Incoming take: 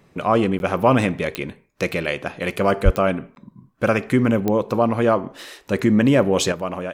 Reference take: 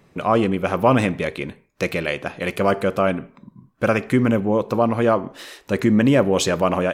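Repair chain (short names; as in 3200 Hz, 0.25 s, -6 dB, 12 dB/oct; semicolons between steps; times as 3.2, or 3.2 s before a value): de-click; 2.84–2.96 HPF 140 Hz 24 dB/oct; interpolate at 0.59/3.35, 11 ms; gain 0 dB, from 6.52 s +7.5 dB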